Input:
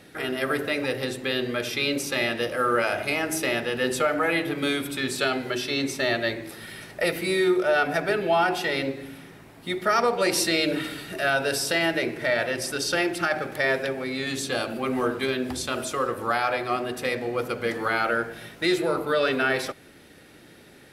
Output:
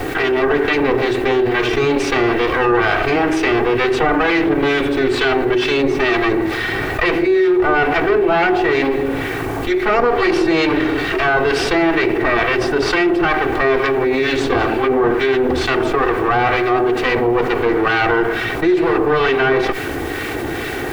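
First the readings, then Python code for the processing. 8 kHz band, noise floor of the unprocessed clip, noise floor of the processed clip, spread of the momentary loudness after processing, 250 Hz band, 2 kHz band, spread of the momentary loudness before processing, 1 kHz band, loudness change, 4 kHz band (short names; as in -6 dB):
-3.0 dB, -50 dBFS, -23 dBFS, 4 LU, +12.0 dB, +8.5 dB, 7 LU, +10.0 dB, +9.0 dB, +4.5 dB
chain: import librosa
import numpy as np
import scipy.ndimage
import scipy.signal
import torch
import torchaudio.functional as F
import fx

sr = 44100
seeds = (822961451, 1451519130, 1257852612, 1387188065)

y = fx.lower_of_two(x, sr, delay_ms=2.6)
y = fx.dynamic_eq(y, sr, hz=370.0, q=2.7, threshold_db=-41.0, ratio=4.0, max_db=5)
y = scipy.signal.sosfilt(scipy.signal.butter(2, 2400.0, 'lowpass', fs=sr, output='sos'), y)
y = fx.harmonic_tremolo(y, sr, hz=2.2, depth_pct=50, crossover_hz=1400.0)
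y = fx.quant_dither(y, sr, seeds[0], bits=12, dither='triangular')
y = fx.env_flatten(y, sr, amount_pct=70)
y = y * 10.0 ** (5.5 / 20.0)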